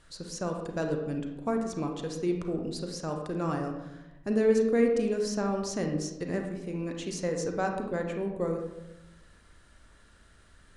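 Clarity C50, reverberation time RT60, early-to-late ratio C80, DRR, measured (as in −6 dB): 4.5 dB, 0.95 s, 7.0 dB, 3.0 dB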